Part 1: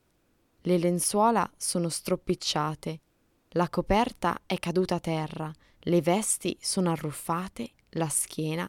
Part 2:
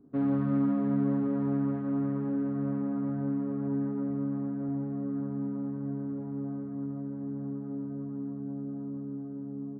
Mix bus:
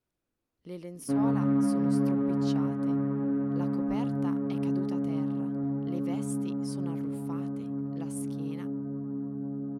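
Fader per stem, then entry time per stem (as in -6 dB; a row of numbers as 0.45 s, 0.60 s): -16.5 dB, +1.5 dB; 0.00 s, 0.95 s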